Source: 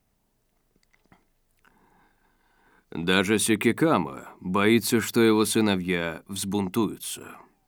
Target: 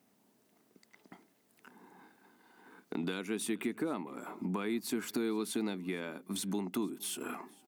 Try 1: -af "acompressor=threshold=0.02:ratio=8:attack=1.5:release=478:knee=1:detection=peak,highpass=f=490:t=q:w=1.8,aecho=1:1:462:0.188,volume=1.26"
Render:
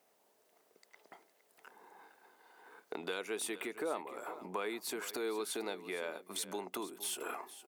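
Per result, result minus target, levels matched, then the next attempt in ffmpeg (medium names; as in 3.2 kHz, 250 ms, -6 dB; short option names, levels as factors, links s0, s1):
250 Hz band -7.5 dB; echo-to-direct +10 dB
-af "acompressor=threshold=0.02:ratio=8:attack=1.5:release=478:knee=1:detection=peak,highpass=f=240:t=q:w=1.8,aecho=1:1:462:0.188,volume=1.26"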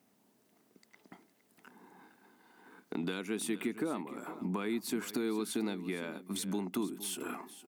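echo-to-direct +10 dB
-af "acompressor=threshold=0.02:ratio=8:attack=1.5:release=478:knee=1:detection=peak,highpass=f=240:t=q:w=1.8,aecho=1:1:462:0.0596,volume=1.26"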